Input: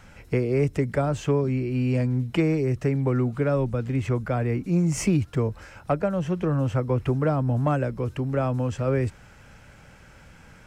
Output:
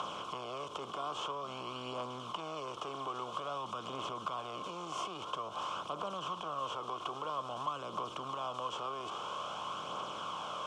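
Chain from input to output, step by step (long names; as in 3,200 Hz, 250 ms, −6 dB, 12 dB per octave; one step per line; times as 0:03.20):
compressor on every frequency bin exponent 0.4
brickwall limiter −16 dBFS, peak gain reduction 9 dB
phase shifter 0.5 Hz, delay 2.9 ms, feedback 32%
pair of resonant band-passes 1,900 Hz, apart 1.6 octaves
multiband upward and downward compressor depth 40%
level +2 dB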